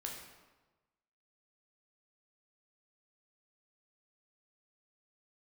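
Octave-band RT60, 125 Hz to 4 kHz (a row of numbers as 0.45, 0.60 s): 1.3, 1.2, 1.2, 1.2, 1.0, 0.85 s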